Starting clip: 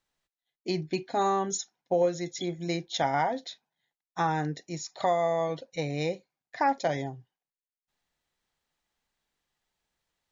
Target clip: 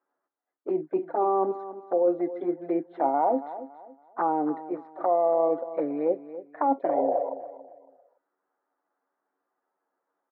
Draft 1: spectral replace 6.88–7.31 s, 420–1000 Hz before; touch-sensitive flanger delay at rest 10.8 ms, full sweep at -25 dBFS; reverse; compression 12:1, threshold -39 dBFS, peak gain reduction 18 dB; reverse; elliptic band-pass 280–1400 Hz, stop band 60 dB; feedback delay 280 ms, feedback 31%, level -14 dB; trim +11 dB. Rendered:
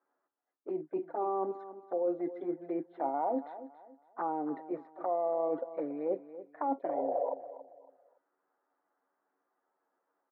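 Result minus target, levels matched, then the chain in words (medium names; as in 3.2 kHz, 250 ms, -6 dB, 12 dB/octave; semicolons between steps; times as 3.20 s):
compression: peak gain reduction +8.5 dB
spectral replace 6.88–7.31 s, 420–1000 Hz before; touch-sensitive flanger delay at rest 10.8 ms, full sweep at -25 dBFS; reverse; compression 12:1, threshold -29.5 dBFS, peak gain reduction 9 dB; reverse; elliptic band-pass 280–1400 Hz, stop band 60 dB; feedback delay 280 ms, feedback 31%, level -14 dB; trim +11 dB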